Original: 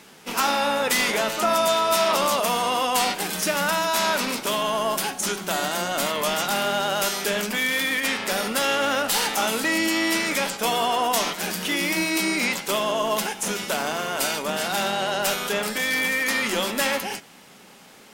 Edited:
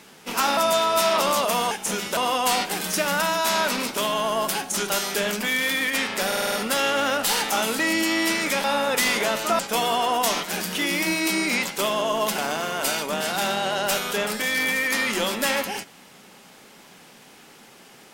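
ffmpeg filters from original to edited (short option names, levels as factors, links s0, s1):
-filter_complex "[0:a]asplit=13[s0][s1][s2][s3][s4][s5][s6][s7][s8][s9][s10][s11][s12];[s0]atrim=end=0.572[s13];[s1]atrim=start=1.518:end=2.662[s14];[s2]atrim=start=13.278:end=13.742[s15];[s3]atrim=start=2.658:end=5.392[s16];[s4]atrim=start=6.998:end=8.422[s17];[s5]atrim=start=8.368:end=8.422[s18];[s6]atrim=start=8.368:end=8.422[s19];[s7]atrim=start=8.368:end=8.422[s20];[s8]atrim=start=8.368:end=8.422[s21];[s9]atrim=start=8.368:end=10.492[s22];[s10]atrim=start=0.568:end=1.522[s23];[s11]atrim=start=10.488:end=13.282[s24];[s12]atrim=start=13.738[s25];[s13][s14]acrossfade=d=0.004:c1=hsin:c2=hsin[s26];[s26][s15]acrossfade=d=0.004:c1=hsin:c2=hsin[s27];[s27][s16]acrossfade=d=0.004:c1=hsin:c2=hsin[s28];[s28][s17]acrossfade=d=0.004:c1=hsin:c2=hsin[s29];[s29][s18]acrossfade=d=0.004:c1=hsin:c2=hsin[s30];[s30][s19]acrossfade=d=0.004:c1=hsin:c2=hsin[s31];[s31][s20]acrossfade=d=0.004:c1=hsin:c2=hsin[s32];[s32][s21]acrossfade=d=0.004:c1=hsin:c2=hsin[s33];[s33][s22]acrossfade=d=0.004:c1=hsin:c2=hsin[s34];[s34][s23]acrossfade=d=0.004:c1=hsin:c2=hsin[s35];[s35][s24]acrossfade=d=0.004:c1=hsin:c2=hsin[s36];[s36][s25]acrossfade=d=0.004:c1=hsin:c2=hsin"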